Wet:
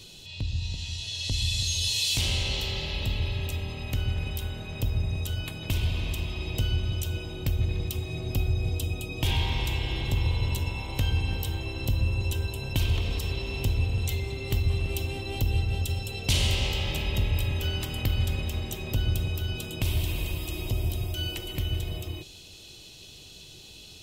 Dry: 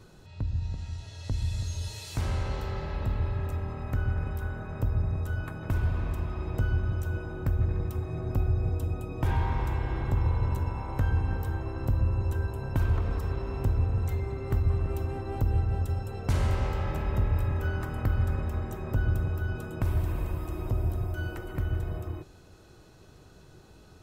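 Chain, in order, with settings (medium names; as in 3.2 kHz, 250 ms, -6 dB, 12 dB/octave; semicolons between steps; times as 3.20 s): resonant high shelf 2.1 kHz +13.5 dB, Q 3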